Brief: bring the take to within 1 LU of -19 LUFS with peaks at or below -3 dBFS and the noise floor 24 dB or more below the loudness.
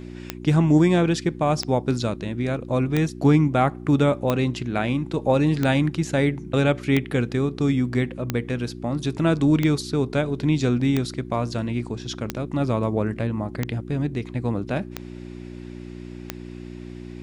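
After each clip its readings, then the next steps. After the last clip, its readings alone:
clicks found 13; hum 60 Hz; highest harmonic 360 Hz; hum level -34 dBFS; loudness -23.0 LUFS; peak level -5.5 dBFS; loudness target -19.0 LUFS
-> de-click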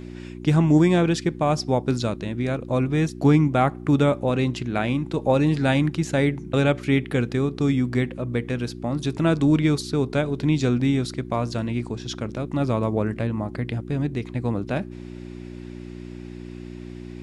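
clicks found 0; hum 60 Hz; highest harmonic 360 Hz; hum level -34 dBFS
-> de-hum 60 Hz, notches 6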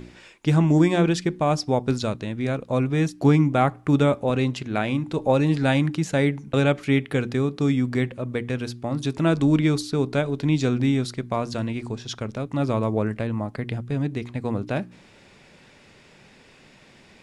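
hum not found; loudness -23.5 LUFS; peak level -6.5 dBFS; loudness target -19.0 LUFS
-> trim +4.5 dB; peak limiter -3 dBFS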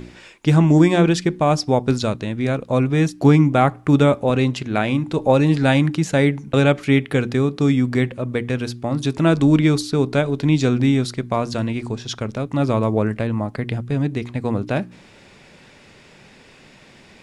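loudness -19.0 LUFS; peak level -3.0 dBFS; noise floor -48 dBFS

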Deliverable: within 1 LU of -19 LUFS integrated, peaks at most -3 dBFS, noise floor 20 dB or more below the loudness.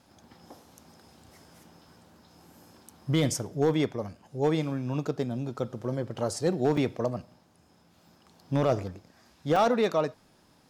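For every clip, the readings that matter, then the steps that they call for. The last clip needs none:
clipped samples 0.4%; clipping level -16.5 dBFS; dropouts 2; longest dropout 3.9 ms; loudness -29.0 LUFS; peak level -16.5 dBFS; loudness target -19.0 LUFS
-> clip repair -16.5 dBFS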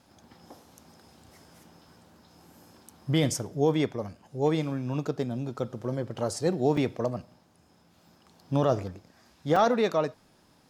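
clipped samples 0.0%; dropouts 2; longest dropout 3.9 ms
-> interpolate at 6.77/9.56 s, 3.9 ms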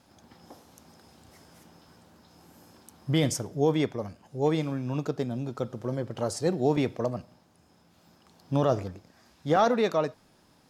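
dropouts 0; loudness -28.5 LUFS; peak level -11.5 dBFS; loudness target -19.0 LUFS
-> trim +9.5 dB; peak limiter -3 dBFS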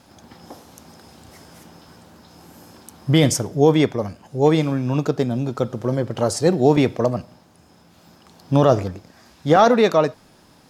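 loudness -19.0 LUFS; peak level -3.0 dBFS; noise floor -52 dBFS

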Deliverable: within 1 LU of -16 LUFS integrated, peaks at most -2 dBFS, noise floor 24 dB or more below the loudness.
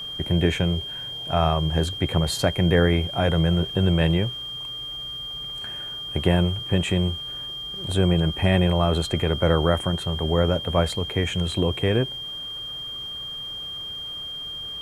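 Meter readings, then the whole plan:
steady tone 3.2 kHz; tone level -31 dBFS; loudness -24.0 LUFS; peak level -5.0 dBFS; loudness target -16.0 LUFS
-> band-stop 3.2 kHz, Q 30; trim +8 dB; peak limiter -2 dBFS

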